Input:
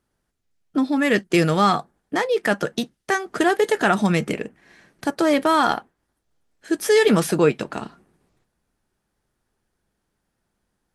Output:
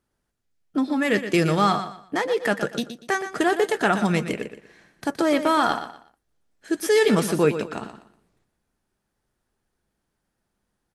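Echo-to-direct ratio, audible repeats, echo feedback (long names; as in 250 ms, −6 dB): −10.0 dB, 3, 27%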